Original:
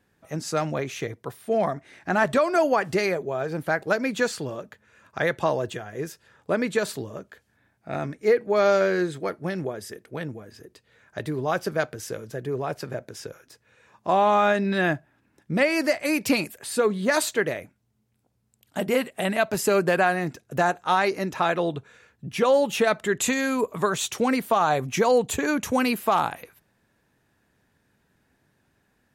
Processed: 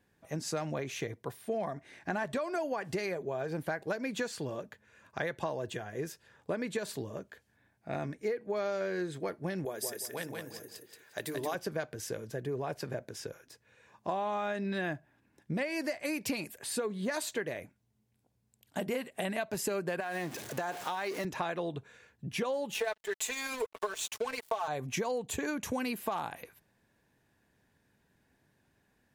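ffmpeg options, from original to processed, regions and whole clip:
ffmpeg -i in.wav -filter_complex "[0:a]asettb=1/sr,asplit=3[link_01][link_02][link_03];[link_01]atrim=end=9.654[link_04];[link_02]atrim=start=9.65:end=11.55,asetpts=PTS-STARTPTS,afade=type=in:duration=0.004:curve=qsin,afade=type=out:start_time=1.896:duration=0.004:curve=qsin,aemphasis=mode=production:type=bsi,bandreject=frequency=50:width_type=h:width=6,bandreject=frequency=100:width_type=h:width=6,bandreject=frequency=150:width_type=h:width=6,bandreject=frequency=200:width_type=h:width=6,bandreject=frequency=250:width_type=h:width=6,bandreject=frequency=300:width_type=h:width=6,bandreject=frequency=350:width_type=h:width=6,aecho=1:1:177|354|531|708:0.631|0.164|0.0427|0.0111,atrim=end_sample=83790[link_05];[link_03]atrim=start=11.546[link_06];[link_04][link_05]acrossfade=duration=0.004:curve1=hsin:curve2=qsin[link_07];[link_07][link_06]acrossfade=duration=0.004:curve1=qsin:curve2=hsin,asettb=1/sr,asplit=3[link_08][link_09][link_10];[link_08]atrim=end=20.004[link_11];[link_09]atrim=start=20:end=21.25,asetpts=PTS-STARTPTS,afade=type=in:duration=0.004:curve=qsin,afade=type=out:start_time=1.246:duration=0.004:curve=qsin,aeval=exprs='val(0)+0.5*0.0251*sgn(val(0))':channel_layout=same,highpass=frequency=320:poles=1,acompressor=threshold=-22dB:ratio=6:attack=3.2:release=140:knee=1:detection=peak[link_12];[link_10]atrim=start=21.246[link_13];[link_11][link_12]acrossfade=duration=0.004:curve1=hsin:curve2=qsin[link_14];[link_14][link_13]acrossfade=duration=0.004:curve1=qsin:curve2=hsin,asettb=1/sr,asplit=3[link_15][link_16][link_17];[link_15]atrim=end=22.744[link_18];[link_16]atrim=start=22.74:end=24.68,asetpts=PTS-STARTPTS,afade=type=in:duration=0.004:curve=qsin,afade=type=out:start_time=1.936:duration=0.004:curve=qsin,highpass=frequency=420:width=0.5412,highpass=frequency=420:width=1.3066,aecho=1:1:4.6:0.97,atrim=end_sample=85554,aeval=exprs='sgn(val(0))*max(abs(val(0))-0.02,0)':channel_layout=same[link_19];[link_17]atrim=start=24.676[link_20];[link_18][link_19]acrossfade=duration=0.004:curve1=hsin:curve2=qsin[link_21];[link_21][link_20]acrossfade=duration=0.004:curve1=qsin:curve2=hsin,bandreject=frequency=1300:width=9.7,acompressor=threshold=-27dB:ratio=6,volume=-4dB" out.wav

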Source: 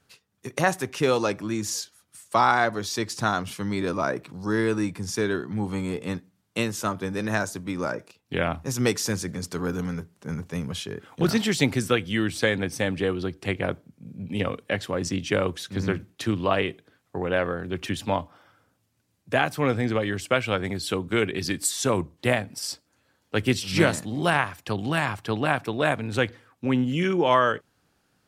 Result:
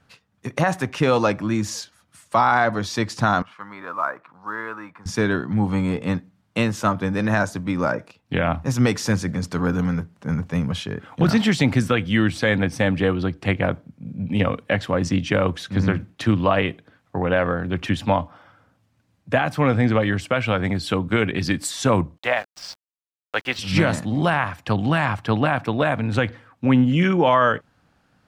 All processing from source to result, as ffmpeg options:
ffmpeg -i in.wav -filter_complex "[0:a]asettb=1/sr,asplit=3[link_01][link_02][link_03];[link_01]atrim=end=3.424[link_04];[link_02]atrim=start=3.42:end=5.06,asetpts=PTS-STARTPTS,afade=type=in:duration=0.004:curve=qsin,afade=type=out:start_time=1.636:duration=0.004:curve=qsin,bandpass=frequency=1200:width_type=q:width=2.4,acrusher=bits=7:mode=log:mix=0:aa=0.000001[link_05];[link_03]atrim=start=5.056[link_06];[link_04][link_05]acrossfade=duration=0.004:curve1=hsin:curve2=qsin[link_07];[link_07][link_06]acrossfade=duration=0.004:curve1=qsin:curve2=hsin,asettb=1/sr,asplit=3[link_08][link_09][link_10];[link_08]atrim=end=22.184[link_11];[link_09]atrim=start=22.18:end=23.59,asetpts=PTS-STARTPTS,afade=type=in:duration=0.004:curve=qsin,afade=type=out:start_time=1.406:duration=0.004:curve=qsin,acrossover=split=490 6000:gain=0.0794 1 0.0708[link_12][link_13][link_14];[link_12][link_13][link_14]amix=inputs=3:normalize=0,aeval=exprs='val(0)*gte(abs(val(0)),0.00891)':channel_layout=same[link_15];[link_10]atrim=start=23.586[link_16];[link_11][link_15]acrossfade=duration=0.004:curve1=hsin:curve2=qsin[link_17];[link_17][link_16]acrossfade=duration=0.004:curve1=qsin:curve2=hsin,lowpass=frequency=2000:poles=1,equalizer=frequency=390:width=2.7:gain=-8,alimiter=level_in=14.5dB:limit=-1dB:release=50:level=0:latency=1,volume=-6dB" out.wav

